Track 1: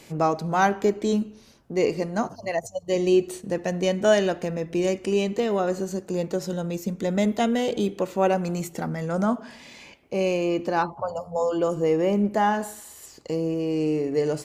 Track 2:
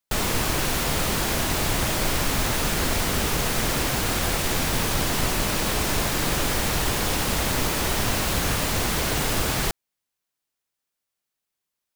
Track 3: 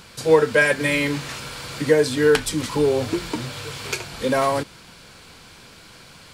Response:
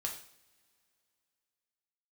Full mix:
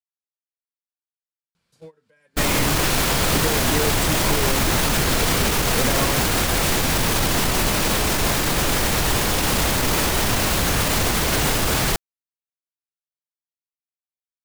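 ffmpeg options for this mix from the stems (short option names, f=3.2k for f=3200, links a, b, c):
-filter_complex "[1:a]alimiter=limit=-19.5dB:level=0:latency=1:release=34,adelay=2250,volume=-2.5dB[a];[2:a]acompressor=threshold=-28dB:ratio=16,adelay=1550,volume=-5.5dB,equalizer=f=170:t=o:w=0.2:g=12.5,alimiter=level_in=3.5dB:limit=-24dB:level=0:latency=1:release=339,volume=-3.5dB,volume=0dB[b];[a][b]amix=inputs=2:normalize=0,agate=range=-32dB:threshold=-32dB:ratio=16:detection=peak,dynaudnorm=f=100:g=31:m=11.5dB"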